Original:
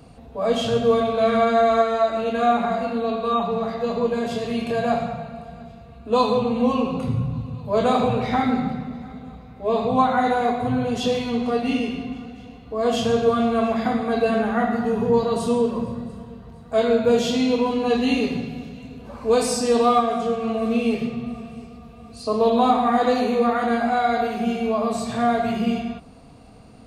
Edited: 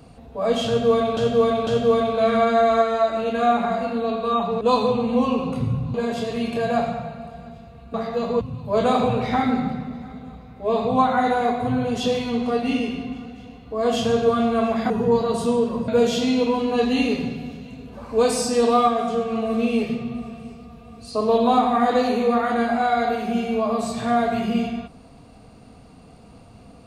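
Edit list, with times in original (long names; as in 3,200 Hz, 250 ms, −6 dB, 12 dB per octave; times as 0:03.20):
0:00.67–0:01.17: repeat, 3 plays
0:03.61–0:04.08: swap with 0:06.08–0:07.41
0:13.90–0:14.92: remove
0:15.90–0:17.00: remove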